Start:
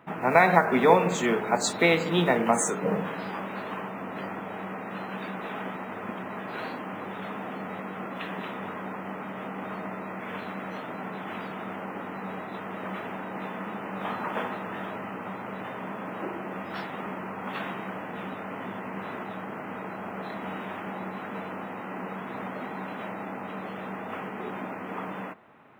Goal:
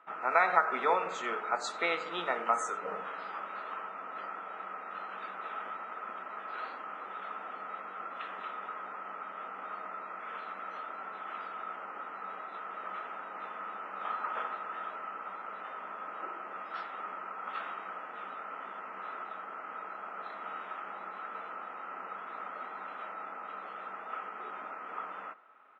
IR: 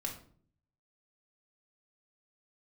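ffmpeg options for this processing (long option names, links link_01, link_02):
-filter_complex "[0:a]highpass=520,lowpass=5500,equalizer=frequency=1300:width_type=o:width=0.23:gain=15,asplit=2[link_01][link_02];[link_02]aecho=0:1:89:0.0794[link_03];[link_01][link_03]amix=inputs=2:normalize=0,volume=-8.5dB"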